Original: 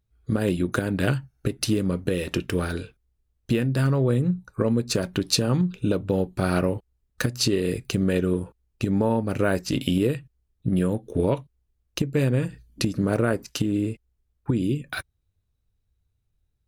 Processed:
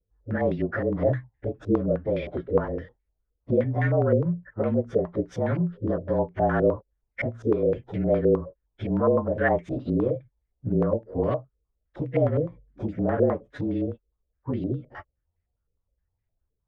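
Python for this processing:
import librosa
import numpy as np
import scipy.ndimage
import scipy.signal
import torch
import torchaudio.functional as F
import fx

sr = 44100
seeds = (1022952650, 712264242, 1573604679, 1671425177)

y = fx.partial_stretch(x, sr, pct=111)
y = fx.peak_eq(y, sr, hz=560.0, db=5.0, octaves=0.35)
y = fx.filter_held_lowpass(y, sr, hz=9.7, low_hz=460.0, high_hz=2100.0)
y = y * 10.0 ** (-2.5 / 20.0)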